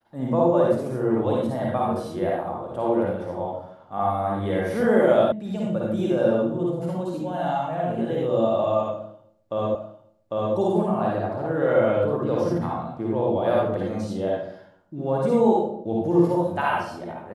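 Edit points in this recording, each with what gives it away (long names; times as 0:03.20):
0:05.32: cut off before it has died away
0:09.75: the same again, the last 0.8 s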